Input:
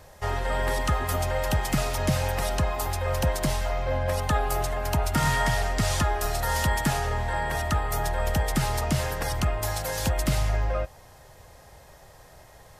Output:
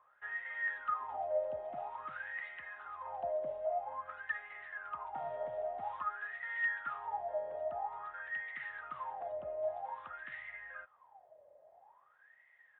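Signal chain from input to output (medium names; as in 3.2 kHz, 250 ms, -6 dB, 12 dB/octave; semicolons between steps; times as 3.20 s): wah-wah 0.5 Hz 580–2000 Hz, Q 21; resampled via 8 kHz; trim +4 dB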